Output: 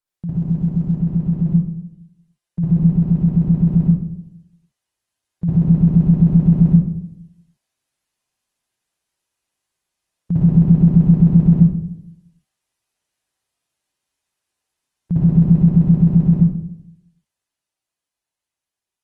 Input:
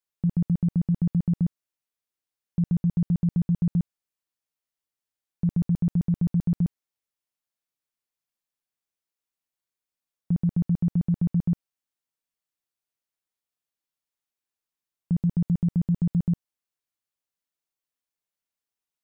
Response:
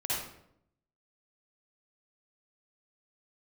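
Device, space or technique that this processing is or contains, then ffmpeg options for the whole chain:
speakerphone in a meeting room: -filter_complex "[0:a]asettb=1/sr,asplit=3[s0][s1][s2];[s0]atrim=end=1.364[s3];[s1]atrim=start=1.36:end=2.76,asetpts=PTS-STARTPTS,afade=t=in:d=0.004:c=qsin,afade=t=out:st=1.396:d=0.004:c=qsin,aecho=1:1:5.8:0.52,atrim=end_sample=61740[s4];[s2]atrim=start=2.756[s5];[s3][s4]acrossfade=d=0.004:c1=hsin:c2=qsin[s6];[s6][s5]acrossfade=d=0.004:c1=qsin:c2=hsin[s7];[1:a]atrim=start_sample=2205[s8];[s7][s8]afir=irnorm=-1:irlink=0,dynaudnorm=f=550:g=11:m=4.73" -ar 48000 -c:a libopus -b:a 24k

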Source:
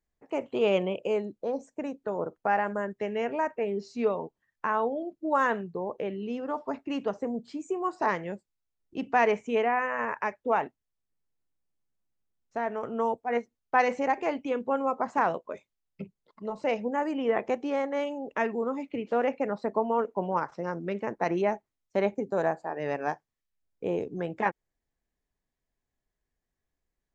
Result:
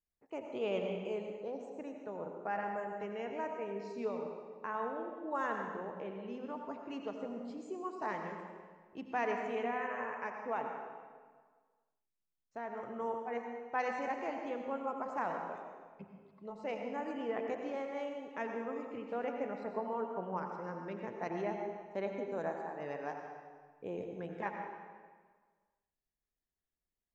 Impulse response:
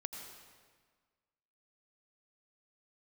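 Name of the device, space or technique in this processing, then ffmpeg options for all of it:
stairwell: -filter_complex "[1:a]atrim=start_sample=2205[s0];[0:a][s0]afir=irnorm=-1:irlink=0,volume=0.376"

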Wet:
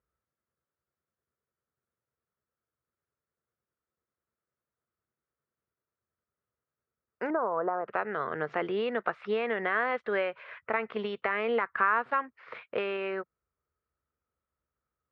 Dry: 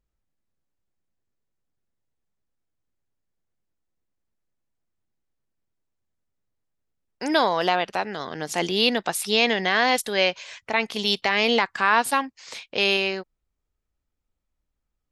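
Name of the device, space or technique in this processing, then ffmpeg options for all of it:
bass amplifier: -filter_complex "[0:a]acompressor=threshold=0.0631:ratio=4,highpass=f=73:w=0.5412,highpass=f=73:w=1.3066,equalizer=f=100:t=q:w=4:g=-8,equalizer=f=180:t=q:w=4:g=-8,equalizer=f=280:t=q:w=4:g=-9,equalizer=f=460:t=q:w=4:g=3,equalizer=f=810:t=q:w=4:g=-6,equalizer=f=1300:t=q:w=4:g=8,lowpass=f=2000:w=0.5412,lowpass=f=2000:w=1.3066,asettb=1/sr,asplit=3[s0][s1][s2];[s0]atrim=end=7.304[s3];[s1]atrim=start=7.3:end=7.88,asetpts=PTS-STARTPTS,afade=t=in:d=0.004:c=qsin,afade=t=out:st=0.576:d=0.004:c=qsin,lowpass=f=1200:w=0.5412,lowpass=f=1200:w=1.3066[s4];[s2]atrim=start=7.876[s5];[s3][s4]acrossfade=d=0.004:c1=hsin:c2=qsin[s6];[s6][s5]acrossfade=d=0.004:c1=qsin:c2=hsin"

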